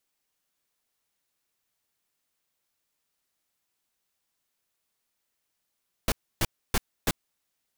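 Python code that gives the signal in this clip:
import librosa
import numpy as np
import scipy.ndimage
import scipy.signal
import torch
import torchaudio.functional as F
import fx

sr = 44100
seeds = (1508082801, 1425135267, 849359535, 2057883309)

y = fx.noise_burst(sr, seeds[0], colour='pink', on_s=0.04, off_s=0.29, bursts=4, level_db=-23.5)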